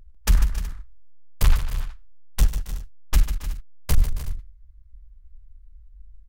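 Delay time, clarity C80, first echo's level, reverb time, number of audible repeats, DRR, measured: 96 ms, no reverb audible, −18.0 dB, no reverb audible, 5, no reverb audible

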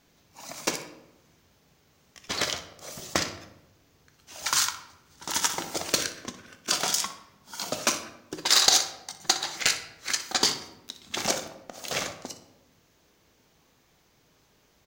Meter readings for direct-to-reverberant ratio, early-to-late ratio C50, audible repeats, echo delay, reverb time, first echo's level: 7.5 dB, 9.5 dB, 1, 61 ms, 0.95 s, −14.0 dB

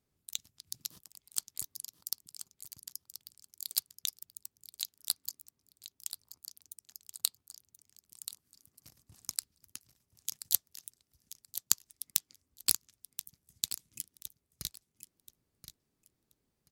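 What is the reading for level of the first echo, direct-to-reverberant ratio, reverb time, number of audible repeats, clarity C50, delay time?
−11.5 dB, no reverb audible, no reverb audible, 2, no reverb audible, 1,030 ms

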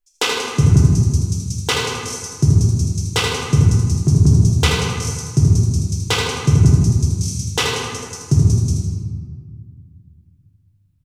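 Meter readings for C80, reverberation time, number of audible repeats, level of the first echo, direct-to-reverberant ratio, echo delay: 0.5 dB, 1.8 s, 1, −5.5 dB, −5.5 dB, 79 ms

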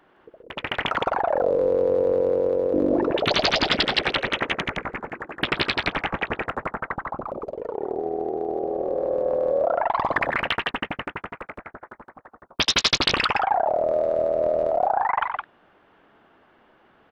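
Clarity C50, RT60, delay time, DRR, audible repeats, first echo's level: no reverb audible, no reverb audible, 92 ms, no reverb audible, 2, −14.5 dB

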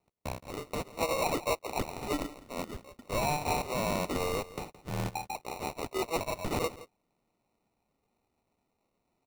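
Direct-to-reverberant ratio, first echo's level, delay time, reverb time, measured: no reverb audible, −17.0 dB, 169 ms, no reverb audible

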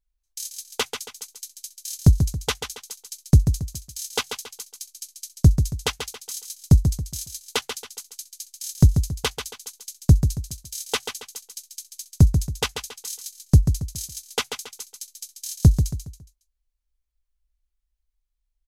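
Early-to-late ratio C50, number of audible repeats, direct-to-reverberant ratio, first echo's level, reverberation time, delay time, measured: no reverb audible, 4, no reverb audible, −7.5 dB, no reverb audible, 138 ms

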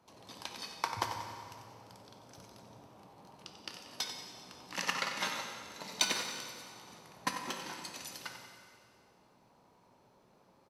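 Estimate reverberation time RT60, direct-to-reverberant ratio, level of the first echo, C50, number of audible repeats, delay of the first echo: 2.1 s, 2.5 dB, −9.5 dB, 3.5 dB, 2, 92 ms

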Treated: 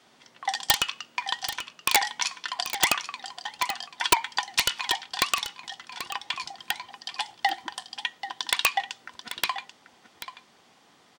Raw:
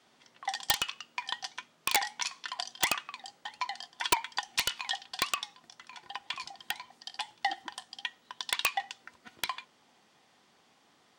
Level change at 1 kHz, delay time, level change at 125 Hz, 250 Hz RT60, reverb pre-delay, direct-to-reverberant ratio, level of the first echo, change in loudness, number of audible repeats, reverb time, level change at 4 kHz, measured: +6.5 dB, 786 ms, +6.0 dB, no reverb audible, no reverb audible, no reverb audible, −11.5 dB, +6.0 dB, 1, no reverb audible, +6.5 dB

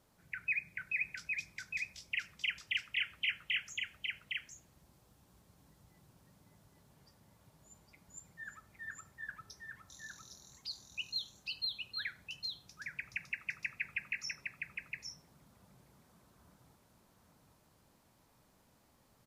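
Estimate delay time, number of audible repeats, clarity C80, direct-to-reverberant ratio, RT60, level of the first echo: 810 ms, 1, no reverb audible, no reverb audible, no reverb audible, −3.5 dB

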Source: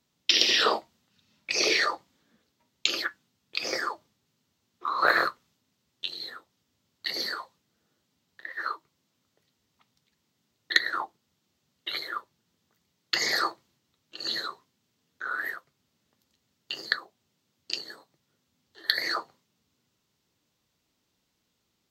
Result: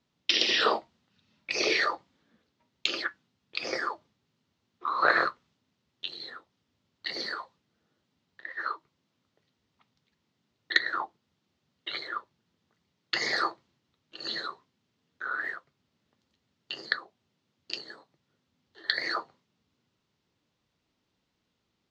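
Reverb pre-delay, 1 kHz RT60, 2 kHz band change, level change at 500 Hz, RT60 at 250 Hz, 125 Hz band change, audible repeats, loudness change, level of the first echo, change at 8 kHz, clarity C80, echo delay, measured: no reverb audible, no reverb audible, −1.0 dB, −0.5 dB, no reverb audible, can't be measured, no echo audible, −2.0 dB, no echo audible, −7.5 dB, no reverb audible, no echo audible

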